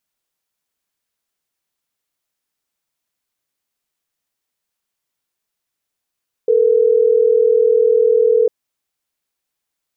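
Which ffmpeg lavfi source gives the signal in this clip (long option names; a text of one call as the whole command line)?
ffmpeg -f lavfi -i "aevalsrc='0.237*(sin(2*PI*440*t)+sin(2*PI*480*t))*clip(min(mod(t,6),2-mod(t,6))/0.005,0,1)':duration=3.12:sample_rate=44100" out.wav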